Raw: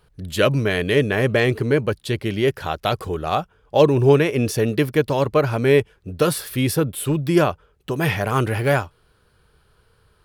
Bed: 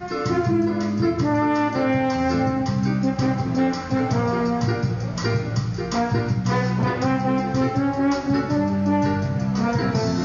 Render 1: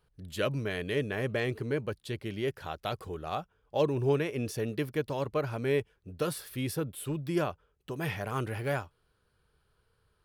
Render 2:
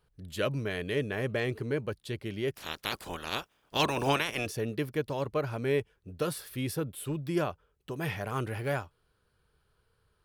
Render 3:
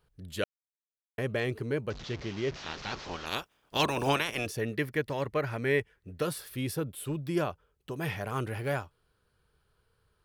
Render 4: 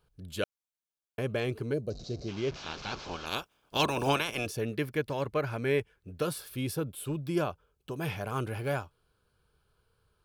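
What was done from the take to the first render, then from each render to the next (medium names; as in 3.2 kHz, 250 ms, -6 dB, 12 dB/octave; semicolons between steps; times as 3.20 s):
trim -13 dB
2.54–4.45 s: spectral peaks clipped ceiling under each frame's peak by 26 dB
0.44–1.18 s: mute; 1.90–3.26 s: one-bit delta coder 32 kbps, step -37.5 dBFS; 4.61–6.22 s: peaking EQ 1.9 kHz +10 dB 0.51 oct
band-stop 1.9 kHz, Q 6.1; 1.74–2.28 s: time-frequency box 760–3700 Hz -16 dB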